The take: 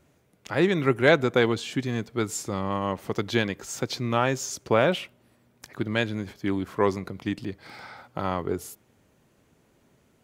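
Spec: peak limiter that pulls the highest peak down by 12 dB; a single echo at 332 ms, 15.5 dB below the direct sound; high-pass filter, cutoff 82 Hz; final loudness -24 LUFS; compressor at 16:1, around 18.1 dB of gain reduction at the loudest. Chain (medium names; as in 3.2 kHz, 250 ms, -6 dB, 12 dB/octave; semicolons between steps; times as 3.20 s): high-pass 82 Hz; compression 16:1, threshold -31 dBFS; peak limiter -28 dBFS; delay 332 ms -15.5 dB; trim +16 dB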